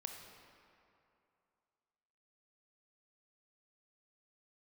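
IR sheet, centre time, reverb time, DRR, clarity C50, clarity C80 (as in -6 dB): 64 ms, 2.7 s, 3.0 dB, 4.0 dB, 5.0 dB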